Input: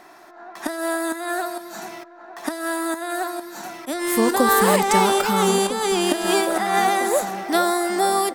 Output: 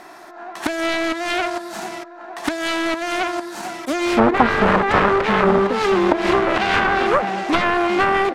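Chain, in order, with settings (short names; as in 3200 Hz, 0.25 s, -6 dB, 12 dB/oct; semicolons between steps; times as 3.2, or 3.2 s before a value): self-modulated delay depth 0.95 ms; treble ducked by the level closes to 1400 Hz, closed at -16 dBFS; gain +6 dB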